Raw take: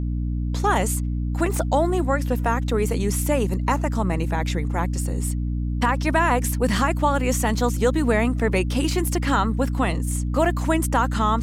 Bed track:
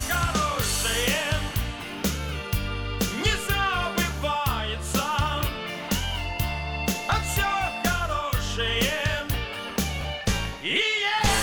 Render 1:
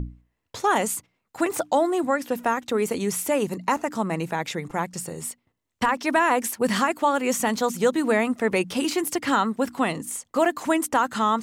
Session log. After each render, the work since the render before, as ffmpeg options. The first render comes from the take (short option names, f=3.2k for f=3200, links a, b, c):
-af "bandreject=f=60:t=h:w=6,bandreject=f=120:t=h:w=6,bandreject=f=180:t=h:w=6,bandreject=f=240:t=h:w=6,bandreject=f=300:t=h:w=6"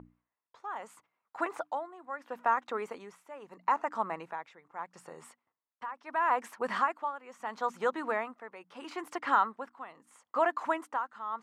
-af "tremolo=f=0.76:d=0.84,bandpass=f=1.1k:t=q:w=1.7:csg=0"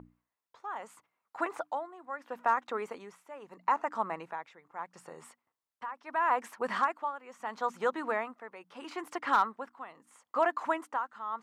-af "asoftclip=type=hard:threshold=-16.5dB"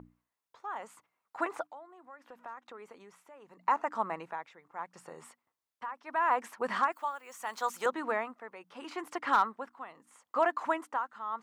-filter_complex "[0:a]asplit=3[a][b][c];[a]afade=t=out:st=1.66:d=0.02[d];[b]acompressor=threshold=-55dB:ratio=2:attack=3.2:release=140:knee=1:detection=peak,afade=t=in:st=1.66:d=0.02,afade=t=out:st=3.65:d=0.02[e];[c]afade=t=in:st=3.65:d=0.02[f];[d][e][f]amix=inputs=3:normalize=0,asettb=1/sr,asplit=3[g][h][i];[g]atrim=end=6.924[j];[h]atrim=start=6.92:end=7.86,asetpts=PTS-STARTPTS,afade=t=in:d=0.004:c=qsin,afade=t=out:st=0.936:d=0.004:c=qsin,aemphasis=mode=production:type=riaa[k];[i]atrim=start=7.856[l];[j][k]acrossfade=d=0.004:c1=hsin:c2=qsin[m];[m][l]acrossfade=d=0.004:c1=qsin:c2=hsin"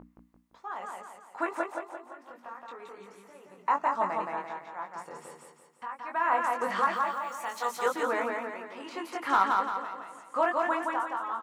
-filter_complex "[0:a]asplit=2[a][b];[b]adelay=21,volume=-4dB[c];[a][c]amix=inputs=2:normalize=0,aecho=1:1:171|342|513|684|855|1026:0.708|0.326|0.15|0.0689|0.0317|0.0146"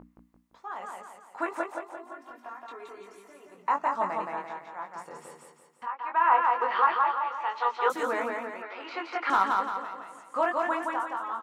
-filter_complex "[0:a]asettb=1/sr,asplit=3[a][b][c];[a]atrim=end=1.974[d];[b]atrim=start=1.97:end=3.55,asetpts=PTS-STARTPTS,afade=t=in:d=0.004:c=qsin,afade=t=out:st=1.576:d=0.004:c=qsin,aecho=1:1:2.9:0.7,atrim=end_sample=69678[e];[c]atrim=start=3.546[f];[d][e]acrossfade=d=0.004:c1=hsin:c2=qsin[g];[g][f]acrossfade=d=0.004:c1=qsin:c2=hsin,asettb=1/sr,asplit=3[h][i][j];[h]atrim=end=5.874[k];[i]atrim=start=5.87:end=7.9,asetpts=PTS-STARTPTS,afade=t=in:d=0.004:c=qsin,afade=t=out:st=2.026:d=0.004:c=qsin,highpass=f=340:w=0.5412,highpass=f=340:w=1.3066,equalizer=f=400:t=q:w=4:g=4,equalizer=f=630:t=q:w=4:g=-4,equalizer=f=900:t=q:w=4:g=8,equalizer=f=1.3k:t=q:w=4:g=4,equalizer=f=2.8k:t=q:w=4:g=4,lowpass=f=3.9k:w=0.5412,lowpass=f=3.9k:w=1.3066[l];[j]atrim=start=7.896[m];[k][l]acrossfade=d=0.004:c1=hsin:c2=qsin[n];[n][m]acrossfade=d=0.004:c1=qsin:c2=hsin,asettb=1/sr,asplit=3[o][p][q];[o]atrim=end=8.624[r];[p]atrim=start=8.62:end=9.3,asetpts=PTS-STARTPTS,afade=t=in:d=0.004:c=qsin,afade=t=out:st=0.676:d=0.004:c=qsin,highpass=f=320:w=0.5412,highpass=f=320:w=1.3066,equalizer=f=750:t=q:w=4:g=5,equalizer=f=1.4k:t=q:w=4:g=9,equalizer=f=2.3k:t=q:w=4:g=8,equalizer=f=4.1k:t=q:w=4:g=4,lowpass=f=5.3k:w=0.5412,lowpass=f=5.3k:w=1.3066[s];[q]atrim=start=9.296[t];[r][s]acrossfade=d=0.004:c1=hsin:c2=qsin[u];[u][t]acrossfade=d=0.004:c1=qsin:c2=hsin"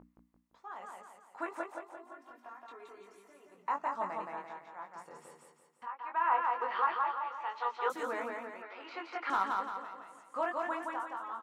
-af "volume=-7.5dB"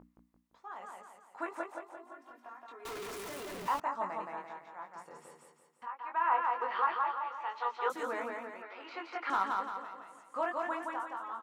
-filter_complex "[0:a]asettb=1/sr,asplit=3[a][b][c];[a]atrim=end=2.854[d];[b]atrim=start=2.85:end=3.8,asetpts=PTS-STARTPTS,afade=t=in:d=0.004:c=qsin,afade=t=out:st=0.946:d=0.004:c=qsin,aeval=exprs='val(0)+0.5*0.0133*sgn(val(0))':c=same[e];[c]atrim=start=3.796[f];[d][e]acrossfade=d=0.004:c1=hsin:c2=qsin[g];[g][f]acrossfade=d=0.004:c1=qsin:c2=hsin"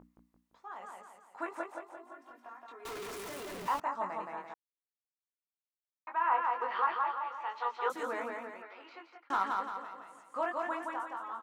-filter_complex "[0:a]asplit=4[a][b][c][d];[a]atrim=end=4.54,asetpts=PTS-STARTPTS,afade=t=out:st=4.536:d=0.004:c=hsin[e];[b]atrim=start=4.54:end=6.07,asetpts=PTS-STARTPTS,volume=0[f];[c]atrim=start=6.07:end=9.3,asetpts=PTS-STARTPTS,afade=t=in:d=0.004:c=hsin,afade=t=out:st=2.43:d=0.8[g];[d]atrim=start=9.3,asetpts=PTS-STARTPTS,afade=t=in:d=0.004:c=hsin[h];[e][f][g][h]concat=n=4:v=0:a=1"